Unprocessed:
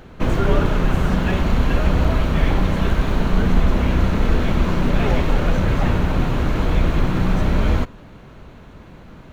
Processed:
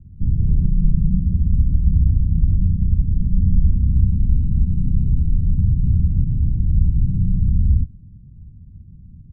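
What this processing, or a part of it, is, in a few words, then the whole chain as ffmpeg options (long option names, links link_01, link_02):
the neighbour's flat through the wall: -filter_complex "[0:a]lowpass=frequency=180:width=0.5412,lowpass=frequency=180:width=1.3066,equalizer=frequency=85:width_type=o:width=0.79:gain=7,asplit=3[link_01][link_02][link_03];[link_01]afade=type=out:start_time=0.62:duration=0.02[link_04];[link_02]aecho=1:1:5.6:0.6,afade=type=in:start_time=0.62:duration=0.02,afade=type=out:start_time=1.18:duration=0.02[link_05];[link_03]afade=type=in:start_time=1.18:duration=0.02[link_06];[link_04][link_05][link_06]amix=inputs=3:normalize=0"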